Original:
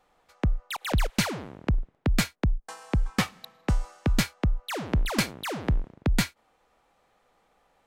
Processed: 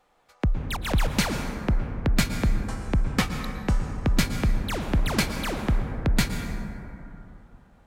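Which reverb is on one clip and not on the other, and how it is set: plate-style reverb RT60 3.2 s, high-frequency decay 0.3×, pre-delay 105 ms, DRR 5.5 dB; trim +1 dB

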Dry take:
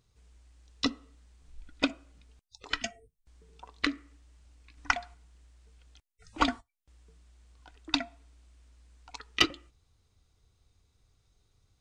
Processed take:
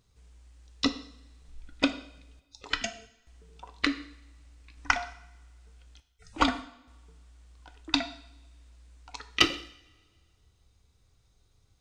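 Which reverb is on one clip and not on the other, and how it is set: two-slope reverb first 0.66 s, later 1.9 s, from -21 dB, DRR 9 dB; trim +2 dB

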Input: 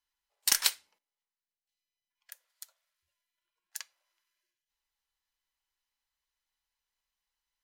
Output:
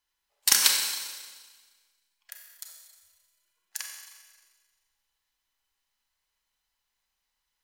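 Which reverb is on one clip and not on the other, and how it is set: Schroeder reverb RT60 1.5 s, combs from 30 ms, DRR 1.5 dB; trim +4.5 dB

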